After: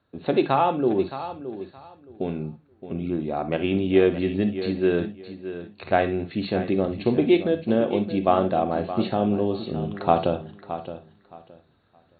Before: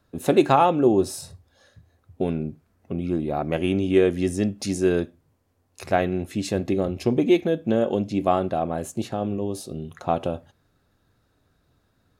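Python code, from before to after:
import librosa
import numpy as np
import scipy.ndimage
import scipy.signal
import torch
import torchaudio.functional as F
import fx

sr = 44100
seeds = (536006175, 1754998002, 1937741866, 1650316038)

p1 = fx.highpass(x, sr, hz=120.0, slope=6)
p2 = fx.rider(p1, sr, range_db=10, speed_s=2.0)
p3 = fx.brickwall_lowpass(p2, sr, high_hz=4500.0)
p4 = p3 + fx.echo_feedback(p3, sr, ms=619, feedback_pct=21, wet_db=-12.0, dry=0)
y = fx.rev_gated(p4, sr, seeds[0], gate_ms=80, shape='rising', drr_db=9.5)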